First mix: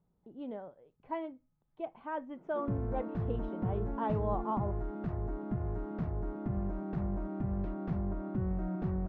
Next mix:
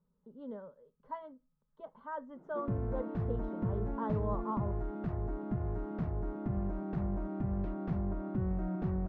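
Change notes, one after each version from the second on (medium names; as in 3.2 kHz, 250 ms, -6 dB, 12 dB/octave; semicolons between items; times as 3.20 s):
speech: add static phaser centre 490 Hz, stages 8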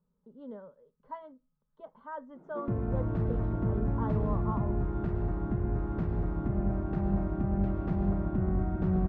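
reverb: on, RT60 1.6 s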